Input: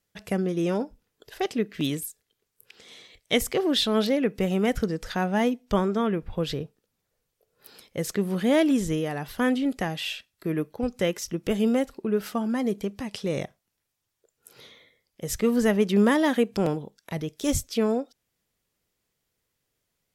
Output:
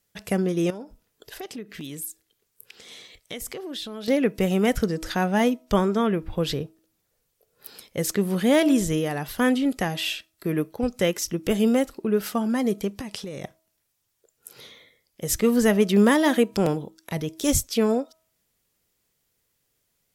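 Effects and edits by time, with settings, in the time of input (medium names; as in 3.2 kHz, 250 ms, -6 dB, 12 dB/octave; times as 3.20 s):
0.70–4.08 s: compression 4:1, threshold -37 dBFS
13.01–13.44 s: compression 10:1, threshold -33 dBFS
whole clip: treble shelf 6.4 kHz +6.5 dB; de-hum 320.8 Hz, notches 4; trim +2.5 dB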